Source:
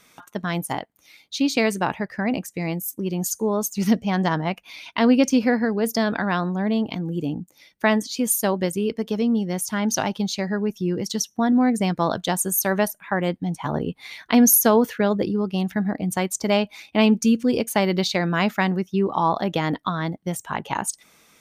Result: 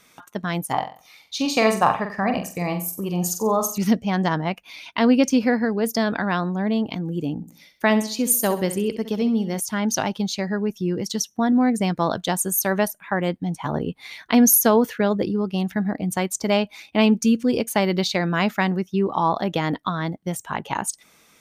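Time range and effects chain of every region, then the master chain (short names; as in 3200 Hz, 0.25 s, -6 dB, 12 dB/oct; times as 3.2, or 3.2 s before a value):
0.73–3.78 band shelf 980 Hz +8 dB 1 oct + comb 1.7 ms, depth 32% + flutter echo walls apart 7.8 m, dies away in 0.38 s
7.35–9.6 high shelf 11000 Hz +5.5 dB + feedback echo 65 ms, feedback 39%, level -12 dB
whole clip: dry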